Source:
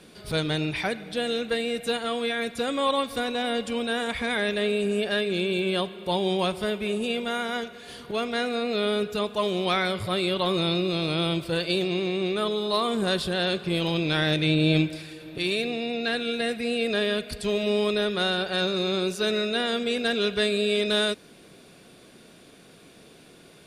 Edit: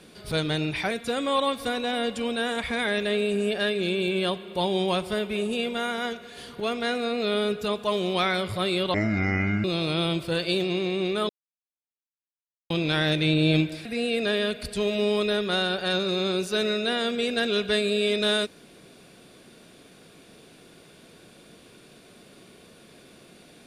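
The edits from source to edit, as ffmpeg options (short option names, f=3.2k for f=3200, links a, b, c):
-filter_complex "[0:a]asplit=7[a][b][c][d][e][f][g];[a]atrim=end=0.912[h];[b]atrim=start=2.418:end=10.454[i];[c]atrim=start=10.45:end=10.85,asetpts=PTS-STARTPTS,asetrate=25137,aresample=44100,atrim=end_sample=30947,asetpts=PTS-STARTPTS[j];[d]atrim=start=10.846:end=12.5,asetpts=PTS-STARTPTS,afade=t=out:st=1.65:d=0.004:c=hsin[k];[e]atrim=start=12.5:end=13.91,asetpts=PTS-STARTPTS,volume=0[l];[f]atrim=start=13.91:end=15.062,asetpts=PTS-STARTPTS,afade=t=in:d=0.004:c=hsin[m];[g]atrim=start=16.528[n];[h][i]acrossfade=d=0.004:c1=hsin:c2=hsin[o];[o][j]acrossfade=d=0.004:c1=hsin:c2=hsin[p];[k][l][m]concat=n=3:v=0:a=1[q];[p][q]acrossfade=d=0.004:c1=hsin:c2=hsin[r];[r][n]acrossfade=d=0.004:c1=hsin:c2=hsin"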